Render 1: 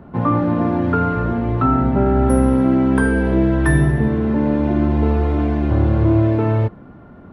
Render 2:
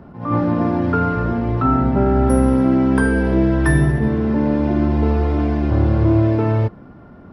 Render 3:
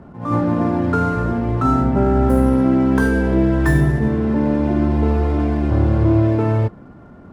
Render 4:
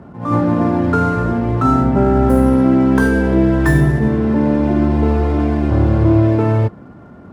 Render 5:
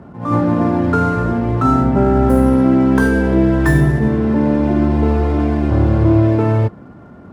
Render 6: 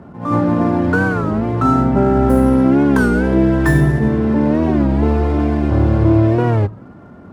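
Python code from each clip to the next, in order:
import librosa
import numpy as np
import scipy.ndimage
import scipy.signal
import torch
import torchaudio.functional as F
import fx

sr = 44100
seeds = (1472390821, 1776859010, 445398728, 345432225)

y1 = fx.peak_eq(x, sr, hz=5100.0, db=10.0, octaves=0.28)
y1 = fx.attack_slew(y1, sr, db_per_s=110.0)
y2 = scipy.ndimage.median_filter(y1, 9, mode='constant')
y3 = scipy.signal.sosfilt(scipy.signal.butter(2, 60.0, 'highpass', fs=sr, output='sos'), y2)
y3 = y3 * 10.0 ** (3.0 / 20.0)
y4 = y3
y5 = fx.hum_notches(y4, sr, base_hz=60, count=2)
y5 = fx.record_warp(y5, sr, rpm=33.33, depth_cents=160.0)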